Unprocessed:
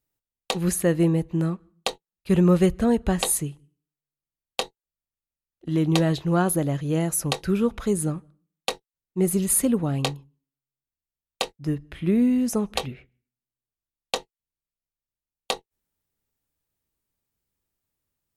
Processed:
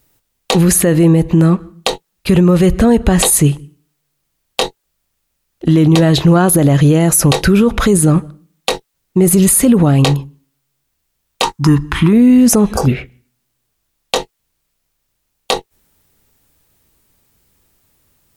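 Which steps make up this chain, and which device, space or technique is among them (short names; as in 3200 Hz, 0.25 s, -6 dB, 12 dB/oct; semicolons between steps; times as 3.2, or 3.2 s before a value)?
loud club master (compressor 3:1, threshold -23 dBFS, peak gain reduction 7.5 dB; hard clip -13 dBFS, distortion -39 dB; maximiser +25 dB); 11.43–12.13 EQ curve 340 Hz 0 dB, 610 Hz -14 dB, 950 Hz +15 dB, 2100 Hz -1 dB, 4500 Hz +1 dB, 6400 Hz +5 dB, 13000 Hz 0 dB; 12.65–12.86 spectral repair 1600–4500 Hz before; gain -1.5 dB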